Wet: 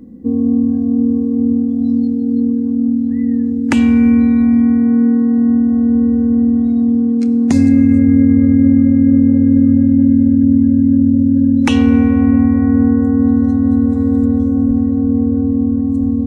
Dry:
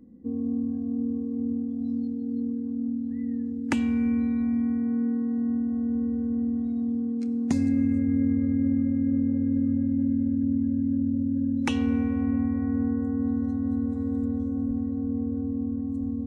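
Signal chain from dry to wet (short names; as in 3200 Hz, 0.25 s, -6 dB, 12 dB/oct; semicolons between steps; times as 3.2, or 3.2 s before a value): maximiser +15.5 dB; gain -1 dB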